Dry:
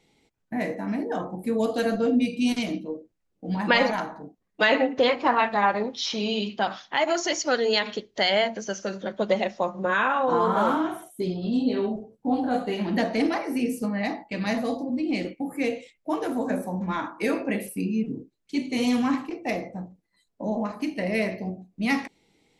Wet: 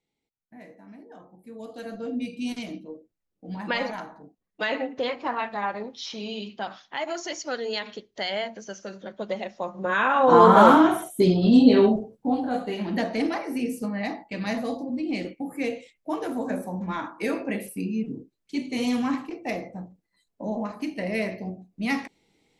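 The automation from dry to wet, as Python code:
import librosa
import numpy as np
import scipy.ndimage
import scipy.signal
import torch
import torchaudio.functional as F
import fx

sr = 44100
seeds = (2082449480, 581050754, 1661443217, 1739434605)

y = fx.gain(x, sr, db=fx.line((1.4, -18.5), (2.27, -7.0), (9.5, -7.0), (10.12, 2.0), (10.39, 9.0), (11.84, 9.0), (12.43, -2.0)))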